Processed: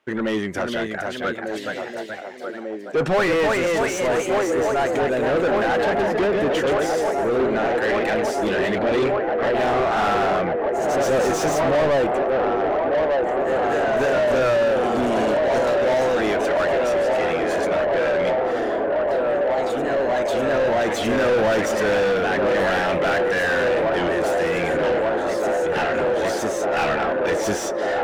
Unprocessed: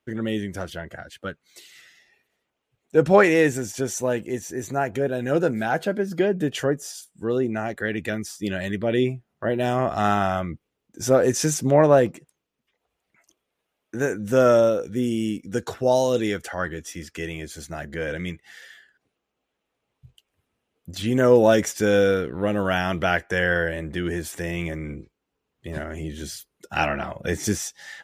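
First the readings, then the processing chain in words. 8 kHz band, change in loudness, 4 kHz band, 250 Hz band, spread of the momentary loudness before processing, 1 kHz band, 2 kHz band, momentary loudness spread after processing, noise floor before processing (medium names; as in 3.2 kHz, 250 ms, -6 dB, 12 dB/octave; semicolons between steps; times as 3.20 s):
-2.0 dB, +2.5 dB, +4.0 dB, +0.5 dB, 17 LU, +6.5 dB, +4.5 dB, 5 LU, -80 dBFS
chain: ever faster or slower copies 493 ms, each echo +1 st, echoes 3, each echo -6 dB; feedback echo behind a band-pass 1195 ms, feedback 83%, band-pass 580 Hz, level -7.5 dB; overdrive pedal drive 30 dB, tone 1.8 kHz, clips at -2.5 dBFS; trim -9 dB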